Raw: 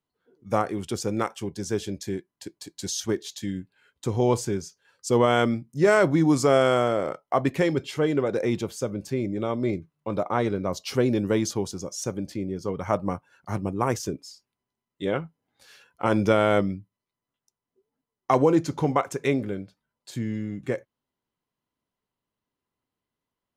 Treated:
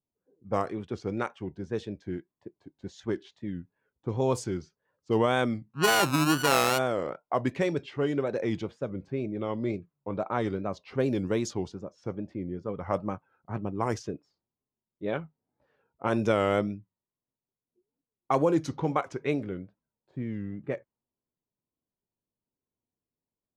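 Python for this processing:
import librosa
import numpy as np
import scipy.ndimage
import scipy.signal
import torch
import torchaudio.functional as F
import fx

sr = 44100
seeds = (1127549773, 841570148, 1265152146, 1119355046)

y = fx.sample_sort(x, sr, block=32, at=(5.72, 6.77), fade=0.02)
y = fx.wow_flutter(y, sr, seeds[0], rate_hz=2.1, depth_cents=120.0)
y = fx.env_lowpass(y, sr, base_hz=650.0, full_db=-18.0)
y = y * 10.0 ** (-4.5 / 20.0)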